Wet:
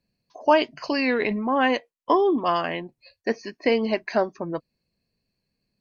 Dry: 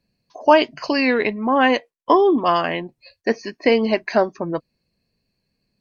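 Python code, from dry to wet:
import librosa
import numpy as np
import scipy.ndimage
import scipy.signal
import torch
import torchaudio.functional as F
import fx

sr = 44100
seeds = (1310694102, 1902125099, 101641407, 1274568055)

y = fx.sustainer(x, sr, db_per_s=32.0, at=(0.86, 1.6))
y = F.gain(torch.from_numpy(y), -5.0).numpy()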